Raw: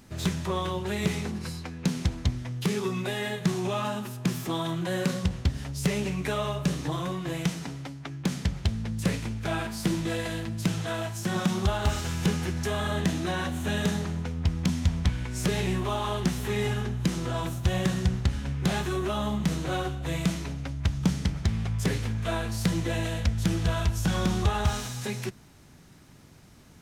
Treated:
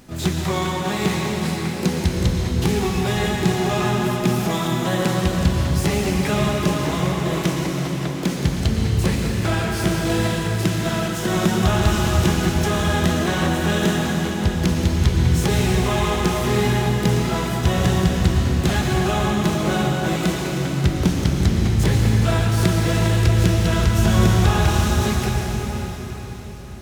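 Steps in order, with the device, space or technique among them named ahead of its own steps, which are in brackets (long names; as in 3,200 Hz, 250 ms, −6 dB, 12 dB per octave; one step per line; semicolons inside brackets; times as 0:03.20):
shimmer-style reverb (pitch-shifted copies added +12 semitones −8 dB; convolution reverb RT60 4.9 s, pre-delay 108 ms, DRR −0.5 dB)
level +5 dB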